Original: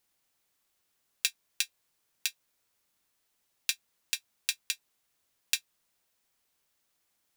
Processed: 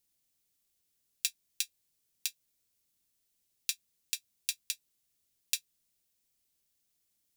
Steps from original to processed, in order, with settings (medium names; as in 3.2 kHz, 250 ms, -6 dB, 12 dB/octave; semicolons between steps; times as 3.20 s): peaking EQ 1.1 kHz -14.5 dB 2.5 oct